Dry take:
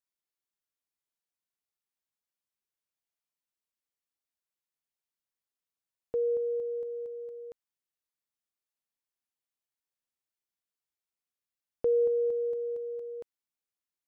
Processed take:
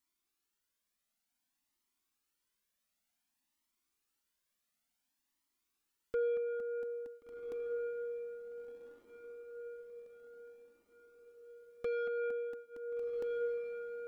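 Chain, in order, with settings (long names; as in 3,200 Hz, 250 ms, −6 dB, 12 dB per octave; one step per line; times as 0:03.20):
octave-band graphic EQ 125/250/500 Hz −10/+10/−6 dB
in parallel at +1 dB: downward compressor, threshold −43 dBFS, peak gain reduction 14 dB
on the sum: soft clipping −32.5 dBFS, distortion −11 dB
on a send: feedback delay with all-pass diffusion 1,463 ms, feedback 50%, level −5 dB
on the sum: flanger whose copies keep moving one way rising 0.55 Hz
level +4.5 dB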